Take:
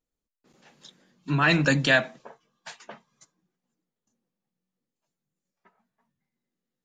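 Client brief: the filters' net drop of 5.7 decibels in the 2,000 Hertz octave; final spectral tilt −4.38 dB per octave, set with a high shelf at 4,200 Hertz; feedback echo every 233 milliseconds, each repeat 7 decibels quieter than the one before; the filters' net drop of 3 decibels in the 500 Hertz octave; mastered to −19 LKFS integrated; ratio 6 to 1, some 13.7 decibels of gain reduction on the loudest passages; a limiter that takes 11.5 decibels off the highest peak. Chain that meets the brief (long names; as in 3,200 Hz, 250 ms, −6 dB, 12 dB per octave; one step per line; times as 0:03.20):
parametric band 500 Hz −3.5 dB
parametric band 2,000 Hz −8.5 dB
high-shelf EQ 4,200 Hz +5.5 dB
downward compressor 6 to 1, threshold −35 dBFS
brickwall limiter −35.5 dBFS
repeating echo 233 ms, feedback 45%, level −7 dB
level +27.5 dB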